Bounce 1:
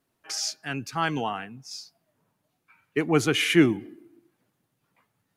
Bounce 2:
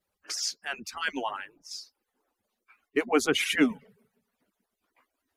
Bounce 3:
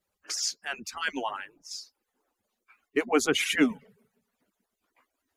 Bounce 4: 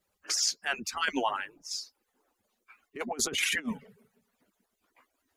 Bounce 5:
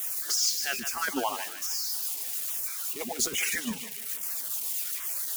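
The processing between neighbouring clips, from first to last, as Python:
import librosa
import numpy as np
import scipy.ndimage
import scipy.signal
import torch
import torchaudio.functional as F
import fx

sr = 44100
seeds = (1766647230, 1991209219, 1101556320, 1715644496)

y1 = fx.hpss_only(x, sr, part='percussive')
y2 = fx.peak_eq(y1, sr, hz=6900.0, db=4.0, octaves=0.28)
y3 = fx.over_compress(y2, sr, threshold_db=-29.0, ratio=-0.5)
y4 = y3 + 0.5 * 10.0 ** (-26.0 / 20.0) * np.diff(np.sign(y3), prepend=np.sign(y3[:1]))
y4 = fx.echo_thinned(y4, sr, ms=152, feedback_pct=44, hz=640.0, wet_db=-9.0)
y4 = fx.filter_lfo_notch(y4, sr, shape='saw_down', hz=1.2, low_hz=750.0, high_hz=4600.0, q=1.6)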